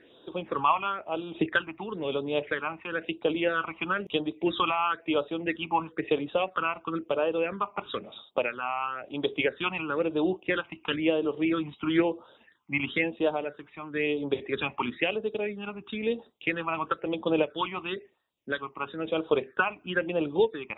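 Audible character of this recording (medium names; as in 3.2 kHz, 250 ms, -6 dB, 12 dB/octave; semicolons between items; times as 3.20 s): phasing stages 8, 1 Hz, lowest notch 470–2000 Hz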